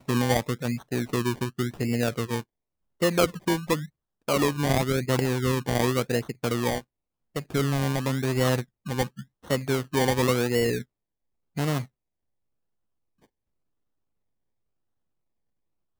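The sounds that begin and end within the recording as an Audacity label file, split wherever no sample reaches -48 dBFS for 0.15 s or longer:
3.010000	3.880000	sound
4.280000	6.810000	sound
7.350000	8.640000	sound
8.860000	9.240000	sound
9.440000	10.830000	sound
11.560000	11.860000	sound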